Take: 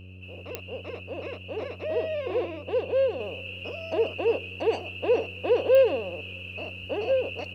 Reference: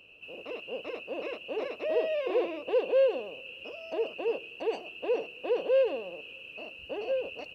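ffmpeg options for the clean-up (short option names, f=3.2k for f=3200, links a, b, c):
-af "adeclick=t=4,bandreject=f=92.8:t=h:w=4,bandreject=f=185.6:t=h:w=4,bandreject=f=278.4:t=h:w=4,bandreject=f=371.2:t=h:w=4,bandreject=f=464:t=h:w=4,bandreject=f=556.8:t=h:w=4,asetnsamples=n=441:p=0,asendcmd='3.2 volume volume -6dB',volume=0dB"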